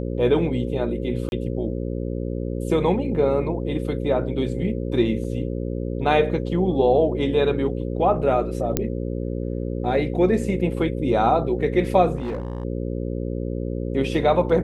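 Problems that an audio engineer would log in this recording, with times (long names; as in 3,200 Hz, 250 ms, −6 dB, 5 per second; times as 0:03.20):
mains buzz 60 Hz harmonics 9 −27 dBFS
0:01.29–0:01.32: drop-out 31 ms
0:05.24–0:05.25: drop-out 5 ms
0:08.77: click −5 dBFS
0:12.15–0:12.65: clipping −23.5 dBFS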